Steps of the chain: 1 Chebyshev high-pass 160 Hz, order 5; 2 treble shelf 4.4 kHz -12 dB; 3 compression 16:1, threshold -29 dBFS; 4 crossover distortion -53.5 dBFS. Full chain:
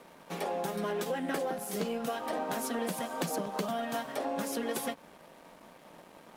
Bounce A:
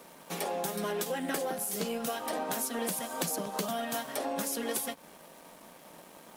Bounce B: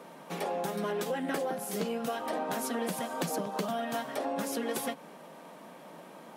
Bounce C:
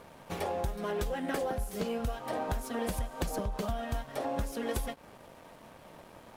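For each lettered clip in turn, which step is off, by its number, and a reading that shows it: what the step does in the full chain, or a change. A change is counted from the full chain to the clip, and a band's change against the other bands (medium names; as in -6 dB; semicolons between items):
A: 2, 8 kHz band +7.5 dB; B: 4, distortion -22 dB; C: 1, 125 Hz band +8.5 dB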